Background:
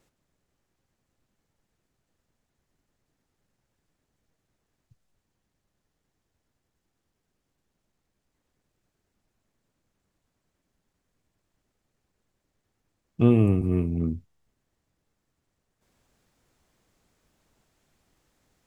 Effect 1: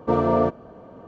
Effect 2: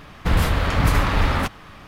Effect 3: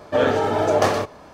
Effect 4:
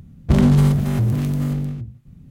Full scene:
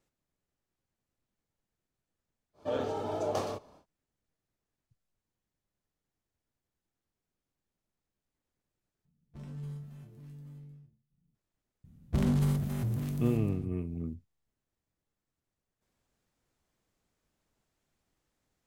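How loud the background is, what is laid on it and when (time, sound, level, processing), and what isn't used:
background -10.5 dB
2.53 add 3 -13.5 dB, fades 0.10 s + bell 1800 Hz -10 dB 0.8 oct
9.05 replace with 4 -17 dB + resonator bank D3 minor, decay 0.27 s
11.84 add 4 -13.5 dB + high shelf 8200 Hz +7.5 dB
not used: 1, 2

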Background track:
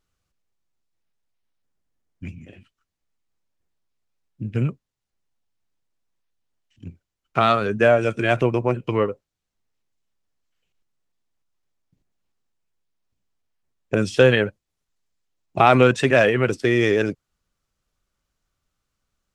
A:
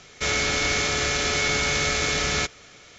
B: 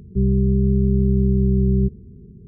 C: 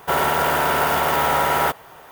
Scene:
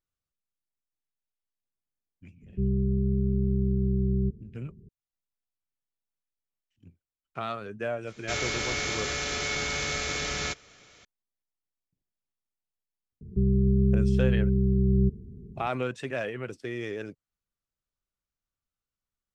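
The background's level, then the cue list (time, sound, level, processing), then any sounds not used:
background track -16 dB
2.42 add B -8.5 dB
8.07 add A -7 dB
13.21 add B -2.5 dB + limiter -13.5 dBFS
not used: C

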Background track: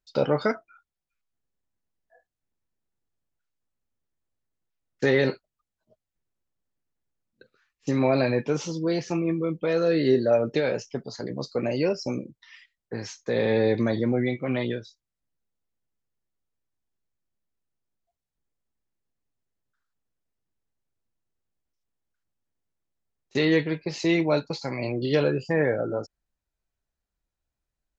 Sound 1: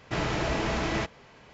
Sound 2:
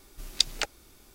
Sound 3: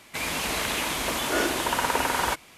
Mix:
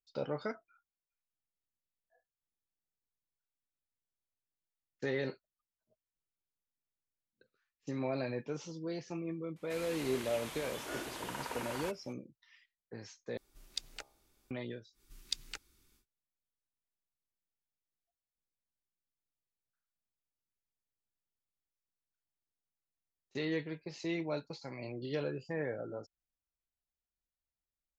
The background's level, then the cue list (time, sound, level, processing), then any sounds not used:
background track -14 dB
9.56 add 3 -17 dB
13.37 replace with 2 -16.5 dB + de-hum 67.15 Hz, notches 18
14.92 add 2 -13.5 dB, fades 0.10 s + bell 640 Hz -15 dB 0.86 oct
not used: 1

